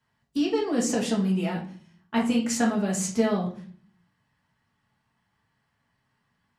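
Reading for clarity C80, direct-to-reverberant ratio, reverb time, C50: 13.5 dB, -3.0 dB, 0.45 s, 8.0 dB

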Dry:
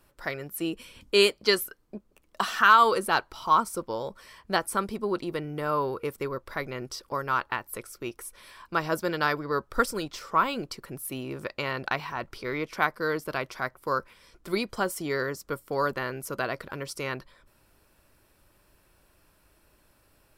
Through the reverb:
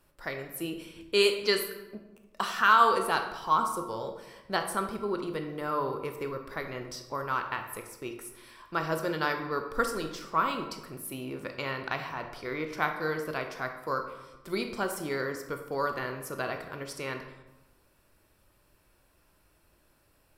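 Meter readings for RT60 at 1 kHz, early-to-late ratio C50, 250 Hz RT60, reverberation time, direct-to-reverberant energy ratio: 1.0 s, 7.5 dB, 1.2 s, 1.0 s, 5.0 dB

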